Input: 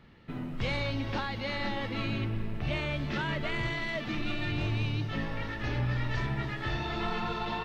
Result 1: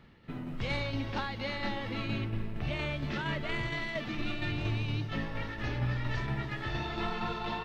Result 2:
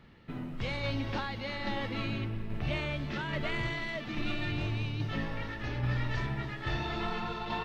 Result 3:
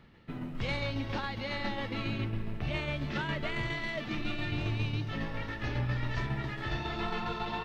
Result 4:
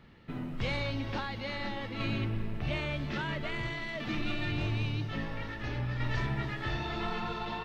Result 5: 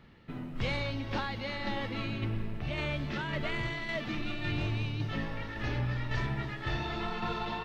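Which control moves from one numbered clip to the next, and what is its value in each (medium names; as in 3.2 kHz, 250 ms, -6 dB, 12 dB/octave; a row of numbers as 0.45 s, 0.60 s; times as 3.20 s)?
tremolo, rate: 4.3 Hz, 1.2 Hz, 7.3 Hz, 0.5 Hz, 1.8 Hz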